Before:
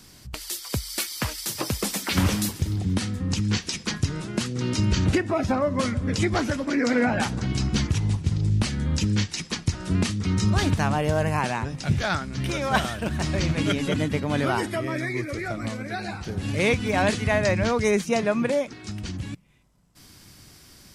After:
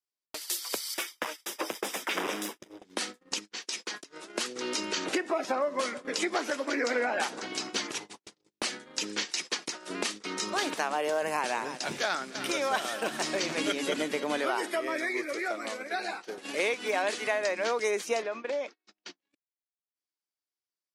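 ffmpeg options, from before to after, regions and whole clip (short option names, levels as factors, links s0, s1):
-filter_complex "[0:a]asettb=1/sr,asplit=3[s0][s1][s2];[s0]atrim=end=0.944[s3];[s1]atrim=start=0.94:end=2.85,asetpts=PTS-STARTPTS,afade=t=in:d=0.004:c=qsin,afade=t=out:st=1.906:d=0.004:c=qsin,bass=f=250:g=4,treble=f=4000:g=-9,aeval=exprs='clip(val(0),-1,0.0531)':c=same,asuperstop=centerf=4300:order=4:qfactor=5.9[s4];[s2]atrim=start=2.846[s5];[s3][s4]acrossfade=d=0.004:c1=hsin:c2=qsin[s6];[s6][s5]acrossfade=d=0.004:c1=qsin:c2=hsin,asettb=1/sr,asplit=3[s7][s8][s9];[s7]atrim=end=3.384[s10];[s8]atrim=start=3.38:end=4.34,asetpts=PTS-STARTPTS,afade=t=in:d=0.004:c=qsin,afade=t=out:st=0.956:d=0.004:c=qsin,highpass=f=100:p=1,acompressor=threshold=0.0398:ratio=12:attack=3.2:release=140:knee=1:detection=peak[s11];[s9]atrim=start=4.336[s12];[s10][s11]acrossfade=d=0.004:c1=hsin:c2=qsin[s13];[s13][s12]acrossfade=d=0.004:c1=qsin:c2=hsin,asettb=1/sr,asplit=3[s14][s15][s16];[s14]atrim=end=11.224[s17];[s15]atrim=start=11.22:end=14.38,asetpts=PTS-STARTPTS,afade=t=in:d=0.004:c=qsin,afade=t=out:st=3.156:d=0.004:c=qsin,bass=f=250:g=9,treble=f=4000:g=3,aecho=1:1:304:0.178,atrim=end_sample=139356[s18];[s16]atrim=start=14.376[s19];[s17][s18]acrossfade=d=0.004:c1=hsin:c2=qsin[s20];[s20][s19]acrossfade=d=0.004:c1=qsin:c2=hsin,asettb=1/sr,asplit=3[s21][s22][s23];[s21]atrim=end=18.224[s24];[s22]atrim=start=18.22:end=19.31,asetpts=PTS-STARTPTS,afade=t=in:d=0.004:c=qsin,afade=t=out:st=1.086:d=0.004:c=qsin,lowpass=f=6000:w=0.5412,lowpass=f=6000:w=1.3066,acompressor=threshold=0.0501:ratio=12:attack=3.2:release=140:knee=1:detection=peak[s25];[s23]atrim=start=19.306[s26];[s24][s25]acrossfade=d=0.004:c1=hsin:c2=qsin[s27];[s27][s26]acrossfade=d=0.004:c1=qsin:c2=hsin,highpass=f=360:w=0.5412,highpass=f=360:w=1.3066,agate=range=0.00501:threshold=0.0126:ratio=16:detection=peak,acompressor=threshold=0.0562:ratio=6"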